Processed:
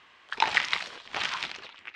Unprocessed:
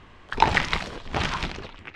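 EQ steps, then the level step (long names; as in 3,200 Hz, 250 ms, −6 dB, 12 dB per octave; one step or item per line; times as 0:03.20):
resonant band-pass 3,400 Hz, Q 0.54
0.0 dB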